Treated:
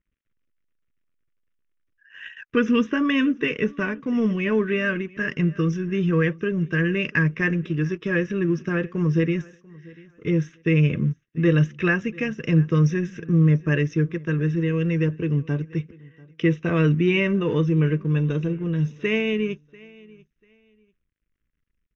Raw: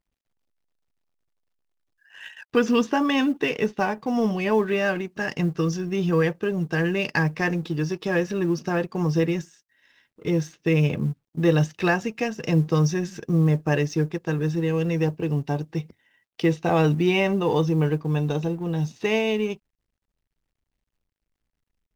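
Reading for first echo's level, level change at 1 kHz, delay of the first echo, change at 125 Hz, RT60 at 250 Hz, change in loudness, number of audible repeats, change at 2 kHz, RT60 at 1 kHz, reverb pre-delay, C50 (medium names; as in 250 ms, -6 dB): -23.5 dB, -7.0 dB, 691 ms, +2.5 dB, no reverb, +1.0 dB, 1, +2.5 dB, no reverb, no reverb, no reverb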